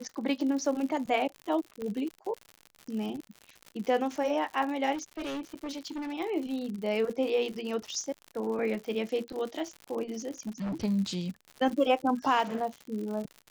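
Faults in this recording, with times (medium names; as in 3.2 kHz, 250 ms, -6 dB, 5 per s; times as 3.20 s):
crackle 110 per s -36 dBFS
1.82 s: pop -25 dBFS
4.94–6.14 s: clipped -33 dBFS
10.38–10.85 s: clipped -30.5 dBFS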